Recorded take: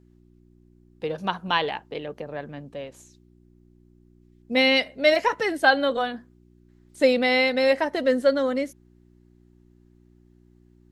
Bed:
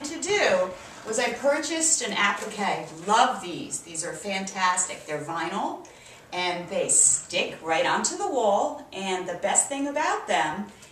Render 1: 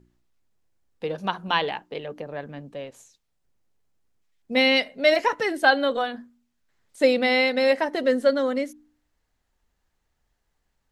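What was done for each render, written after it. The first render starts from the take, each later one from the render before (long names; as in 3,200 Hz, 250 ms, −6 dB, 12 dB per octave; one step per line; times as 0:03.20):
hum removal 60 Hz, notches 6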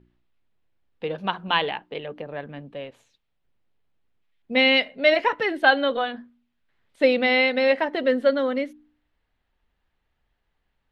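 high shelf with overshoot 4,700 Hz −13 dB, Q 1.5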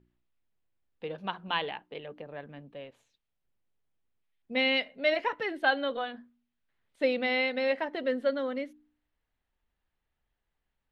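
level −8.5 dB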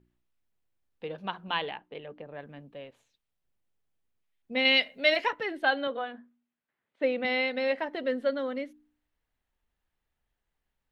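0:01.74–0:02.39: high-frequency loss of the air 130 metres
0:04.65–0:05.31: high-shelf EQ 2,300 Hz +10.5 dB
0:05.87–0:07.25: band-pass filter 180–2,600 Hz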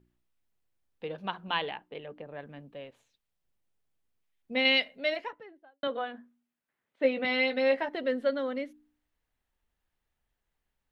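0:04.52–0:05.83: fade out and dull
0:07.03–0:07.89: double-tracking delay 15 ms −6 dB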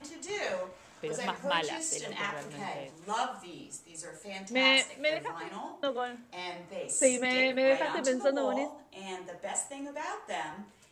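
mix in bed −12.5 dB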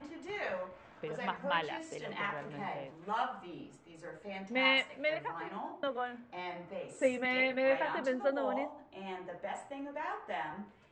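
dynamic equaliser 370 Hz, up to −6 dB, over −42 dBFS, Q 0.83
low-pass filter 2,200 Hz 12 dB per octave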